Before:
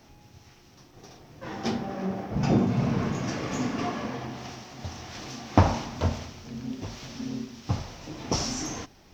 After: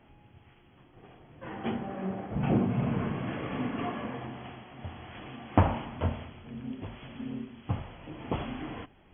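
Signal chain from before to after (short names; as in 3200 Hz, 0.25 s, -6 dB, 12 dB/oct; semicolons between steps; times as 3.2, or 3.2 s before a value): brick-wall FIR low-pass 3400 Hz; gain -3.5 dB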